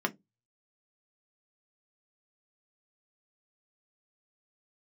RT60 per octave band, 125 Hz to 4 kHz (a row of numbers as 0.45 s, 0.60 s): 0.30 s, 0.30 s, 0.20 s, 0.15 s, 0.15 s, 0.10 s